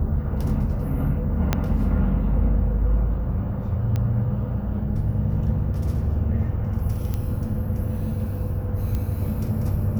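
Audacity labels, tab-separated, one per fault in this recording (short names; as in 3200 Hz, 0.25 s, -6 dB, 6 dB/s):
1.530000	1.530000	pop -6 dBFS
3.960000	3.960000	pop -15 dBFS
7.140000	7.140000	pop -14 dBFS
8.950000	8.950000	pop -15 dBFS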